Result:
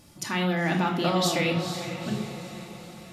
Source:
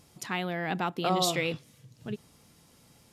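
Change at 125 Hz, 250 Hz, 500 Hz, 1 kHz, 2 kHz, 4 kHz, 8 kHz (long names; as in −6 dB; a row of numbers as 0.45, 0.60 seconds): +8.0, +7.5, +4.0, +2.5, +4.5, +3.5, +2.5 decibels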